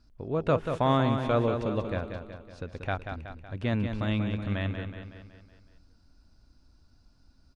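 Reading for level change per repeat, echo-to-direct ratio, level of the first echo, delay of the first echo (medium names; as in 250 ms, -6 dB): -5.5 dB, -5.5 dB, -7.0 dB, 186 ms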